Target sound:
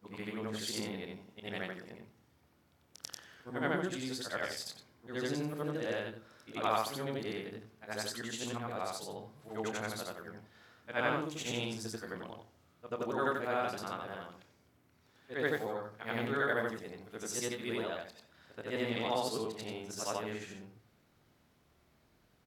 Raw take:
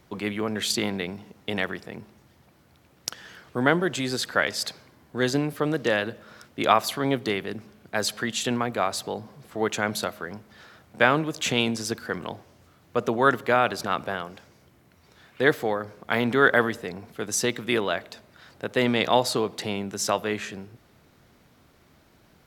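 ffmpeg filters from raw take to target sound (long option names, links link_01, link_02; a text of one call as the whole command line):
ffmpeg -i in.wav -filter_complex "[0:a]afftfilt=real='re':imag='-im':win_size=8192:overlap=0.75,asplit=2[link_01][link_02];[link_02]adelay=27,volume=-10.5dB[link_03];[link_01][link_03]amix=inputs=2:normalize=0,adynamicequalizer=threshold=0.00794:dfrequency=2100:dqfactor=0.71:tfrequency=2100:tqfactor=0.71:attack=5:release=100:ratio=0.375:range=2:mode=cutabove:tftype=bell,volume=-7dB" out.wav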